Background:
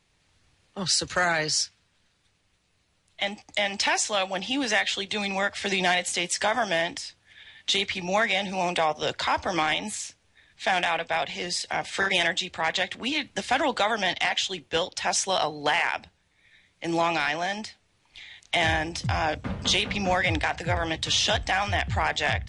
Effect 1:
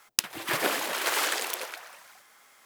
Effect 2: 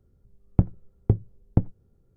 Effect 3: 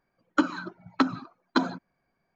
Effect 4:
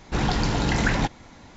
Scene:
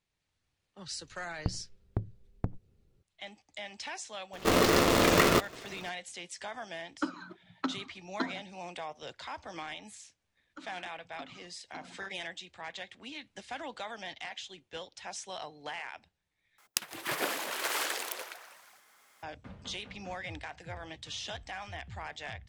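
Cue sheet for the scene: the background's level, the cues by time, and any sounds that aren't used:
background -16.5 dB
0.87 s: add 2 -4.5 dB + compression 2:1, threshold -26 dBFS
4.33 s: add 4 -1.5 dB + polarity switched at an audio rate 390 Hz
6.64 s: add 3 -10.5 dB
10.19 s: add 3 -16.5 dB + compression 2.5:1, threshold -32 dBFS
16.58 s: replace with 1 -5.5 dB + delay 162 ms -21 dB

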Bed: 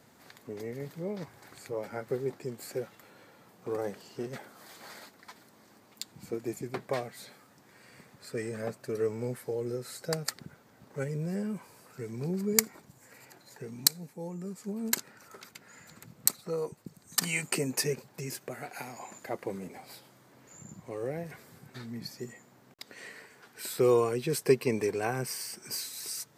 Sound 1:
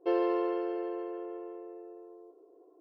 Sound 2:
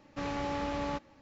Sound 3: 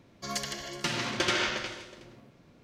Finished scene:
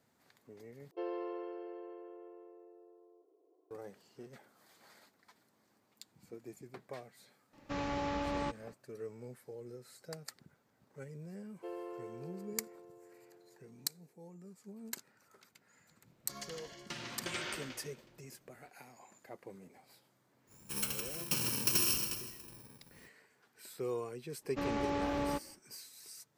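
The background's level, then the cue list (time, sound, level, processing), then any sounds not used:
bed -14 dB
0.91 s: replace with 1 -11.5 dB
7.53 s: add 2 -2 dB
11.57 s: add 1 -16 dB
16.06 s: add 3 -13 dB
20.47 s: add 3 -2.5 dB, fades 0.05 s + bit-reversed sample order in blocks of 64 samples
24.40 s: add 2 -2.5 dB, fades 0.10 s + peaking EQ 380 Hz +7 dB

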